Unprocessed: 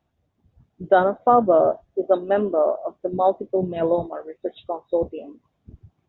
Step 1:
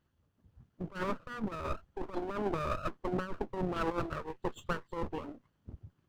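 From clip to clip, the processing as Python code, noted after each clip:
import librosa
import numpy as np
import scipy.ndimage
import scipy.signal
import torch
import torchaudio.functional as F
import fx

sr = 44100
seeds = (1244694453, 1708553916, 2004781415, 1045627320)

y = fx.lower_of_two(x, sr, delay_ms=0.66)
y = fx.over_compress(y, sr, threshold_db=-26.0, ratio=-0.5)
y = y * librosa.db_to_amplitude(-7.0)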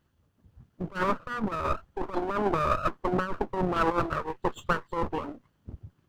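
y = fx.dynamic_eq(x, sr, hz=1100.0, q=0.95, threshold_db=-49.0, ratio=4.0, max_db=5)
y = y * librosa.db_to_amplitude(5.5)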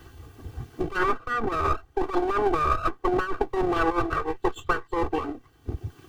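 y = x + 0.95 * np.pad(x, (int(2.6 * sr / 1000.0), 0))[:len(x)]
y = fx.band_squash(y, sr, depth_pct=70)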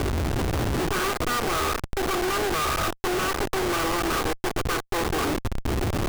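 y = fx.bin_compress(x, sr, power=0.6)
y = fx.schmitt(y, sr, flips_db=-34.5)
y = y * librosa.db_to_amplitude(-1.0)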